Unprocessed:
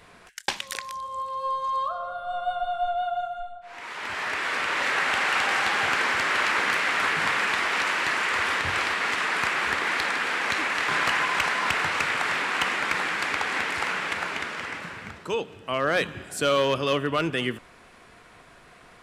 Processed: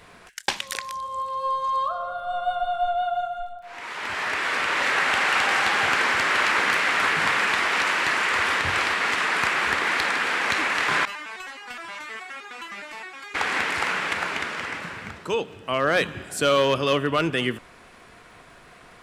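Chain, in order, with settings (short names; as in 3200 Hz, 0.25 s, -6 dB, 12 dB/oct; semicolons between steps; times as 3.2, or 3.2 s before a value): crackle 49/s -53 dBFS; 11.05–13.35 stepped resonator 9.6 Hz 200–410 Hz; gain +2.5 dB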